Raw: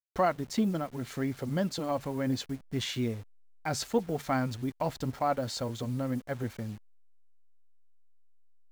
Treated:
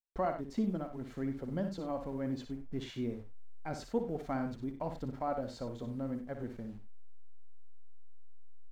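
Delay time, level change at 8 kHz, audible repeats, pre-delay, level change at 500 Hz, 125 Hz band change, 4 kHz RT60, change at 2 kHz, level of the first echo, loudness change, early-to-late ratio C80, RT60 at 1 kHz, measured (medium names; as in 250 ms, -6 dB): 59 ms, -17.5 dB, 2, no reverb, -5.5 dB, -7.5 dB, no reverb, -10.5 dB, -8.0 dB, -6.0 dB, no reverb, no reverb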